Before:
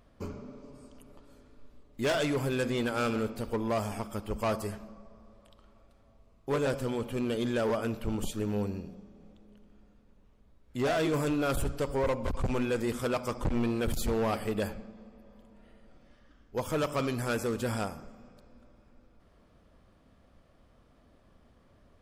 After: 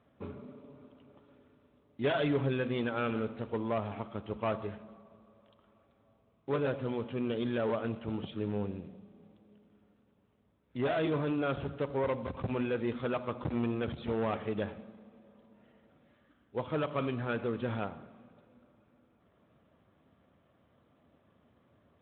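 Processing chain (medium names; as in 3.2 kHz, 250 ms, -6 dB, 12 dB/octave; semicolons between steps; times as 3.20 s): 2.02–2.53 s: comb 7.2 ms, depth 47%; on a send at -18 dB: reverberation, pre-delay 3 ms; on the sum: trim -3 dB; Speex 18 kbps 8 kHz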